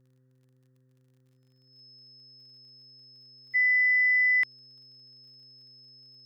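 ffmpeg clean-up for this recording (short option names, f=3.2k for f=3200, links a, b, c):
-af "adeclick=t=4,bandreject=f=128.8:t=h:w=4,bandreject=f=257.6:t=h:w=4,bandreject=f=386.4:t=h:w=4,bandreject=f=515.2:t=h:w=4,bandreject=f=5.2k:w=30,agate=range=-21dB:threshold=-57dB"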